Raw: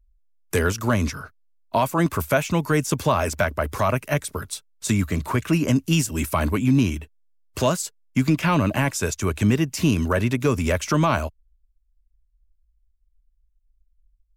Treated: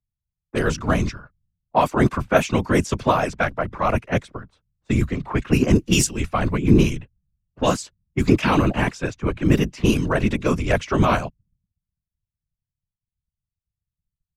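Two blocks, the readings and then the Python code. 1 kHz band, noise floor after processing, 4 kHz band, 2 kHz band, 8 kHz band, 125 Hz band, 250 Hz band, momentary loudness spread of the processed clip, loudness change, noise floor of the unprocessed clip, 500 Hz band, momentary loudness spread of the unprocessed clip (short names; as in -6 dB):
+2.0 dB, under -85 dBFS, +1.5 dB, +1.0 dB, -1.0 dB, +0.5 dB, +1.5 dB, 8 LU, +1.5 dB, -66 dBFS, +2.0 dB, 7 LU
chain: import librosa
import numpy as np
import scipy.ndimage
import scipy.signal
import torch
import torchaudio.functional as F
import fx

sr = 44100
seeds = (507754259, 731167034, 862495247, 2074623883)

y = fx.env_lowpass(x, sr, base_hz=660.0, full_db=-14.5)
y = fx.whisperise(y, sr, seeds[0])
y = fx.band_widen(y, sr, depth_pct=70)
y = F.gain(torch.from_numpy(y), 1.5).numpy()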